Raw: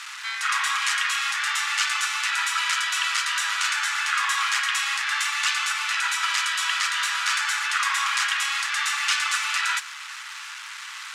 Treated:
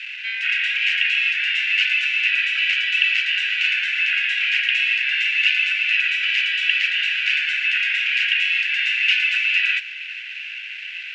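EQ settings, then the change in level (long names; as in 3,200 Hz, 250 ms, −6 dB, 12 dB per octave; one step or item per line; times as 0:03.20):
Chebyshev high-pass with heavy ripple 1,500 Hz, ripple 3 dB
low-pass with resonance 2,700 Hz, resonance Q 9.1
−2.5 dB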